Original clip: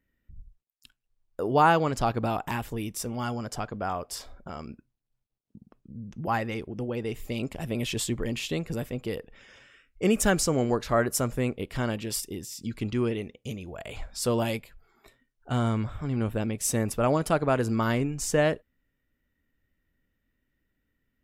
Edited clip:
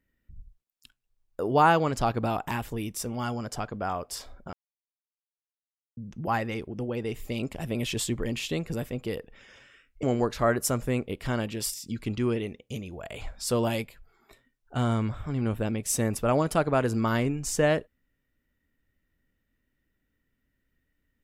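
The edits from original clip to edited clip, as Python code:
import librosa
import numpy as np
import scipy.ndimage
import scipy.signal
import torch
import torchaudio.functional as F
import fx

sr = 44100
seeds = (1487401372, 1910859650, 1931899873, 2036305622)

y = fx.edit(x, sr, fx.silence(start_s=4.53, length_s=1.44),
    fx.cut(start_s=10.03, length_s=0.5),
    fx.cut(start_s=12.24, length_s=0.25), tone=tone)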